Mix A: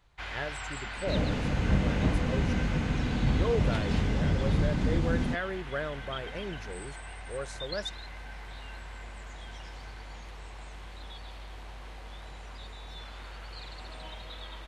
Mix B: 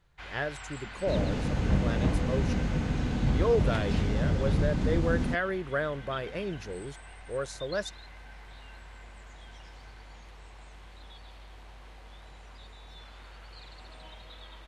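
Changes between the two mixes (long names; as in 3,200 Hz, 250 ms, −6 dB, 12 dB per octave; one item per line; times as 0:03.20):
speech +4.0 dB
first sound −5.0 dB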